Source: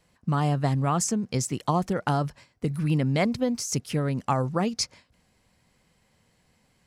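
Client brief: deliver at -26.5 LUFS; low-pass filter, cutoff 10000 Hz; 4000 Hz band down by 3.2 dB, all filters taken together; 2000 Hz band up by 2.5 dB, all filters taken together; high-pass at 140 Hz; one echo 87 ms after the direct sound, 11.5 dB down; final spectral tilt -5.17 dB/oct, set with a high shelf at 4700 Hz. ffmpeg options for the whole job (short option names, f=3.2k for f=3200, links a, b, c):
-af "highpass=140,lowpass=10k,equalizer=f=2k:t=o:g=4.5,equalizer=f=4k:t=o:g=-8.5,highshelf=f=4.7k:g=4,aecho=1:1:87:0.266,volume=1dB"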